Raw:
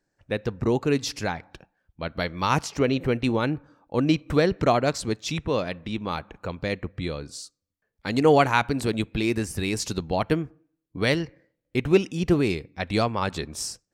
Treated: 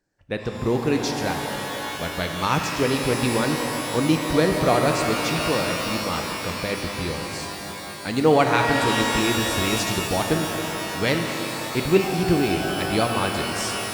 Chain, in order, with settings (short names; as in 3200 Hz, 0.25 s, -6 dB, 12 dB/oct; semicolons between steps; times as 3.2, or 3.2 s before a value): shimmer reverb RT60 4 s, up +12 st, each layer -2 dB, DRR 3.5 dB